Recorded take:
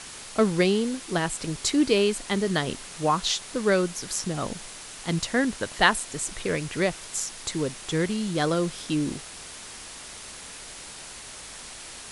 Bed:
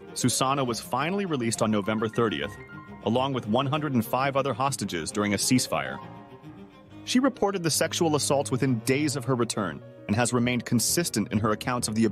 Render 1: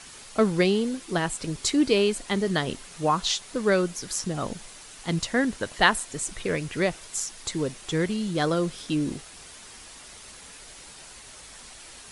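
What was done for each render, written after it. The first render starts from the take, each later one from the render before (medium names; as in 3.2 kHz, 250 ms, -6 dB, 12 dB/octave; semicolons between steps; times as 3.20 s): noise reduction 6 dB, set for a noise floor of -42 dBFS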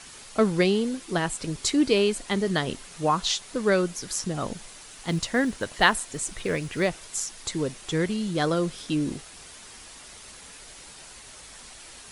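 4.89–6.88 s: companded quantiser 8-bit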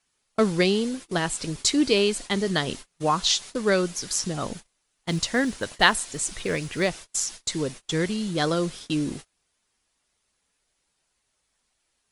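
dynamic bell 5 kHz, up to +5 dB, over -42 dBFS, Q 0.72; gate -37 dBFS, range -29 dB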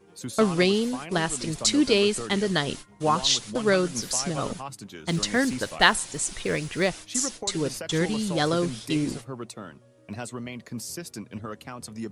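add bed -11.5 dB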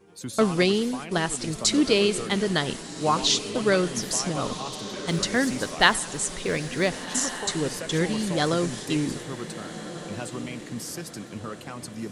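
on a send: echo that smears into a reverb 1478 ms, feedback 46%, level -12.5 dB; on the sum: modulated delay 98 ms, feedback 71%, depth 205 cents, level -23 dB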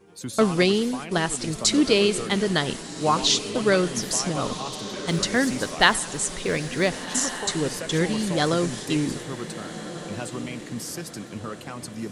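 trim +1.5 dB; peak limiter -1 dBFS, peak gain reduction 1 dB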